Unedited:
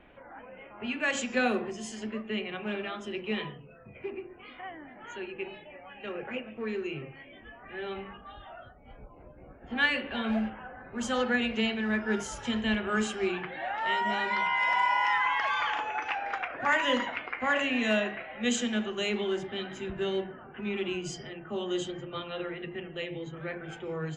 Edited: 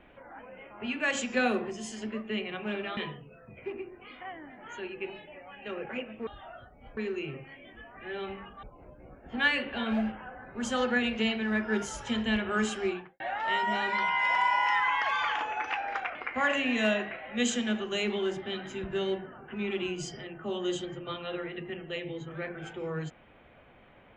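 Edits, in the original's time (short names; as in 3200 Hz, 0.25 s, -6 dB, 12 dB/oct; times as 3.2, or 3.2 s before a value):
2.97–3.35 cut
8.31–9.01 move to 6.65
13.18–13.58 studio fade out
16.53–17.21 cut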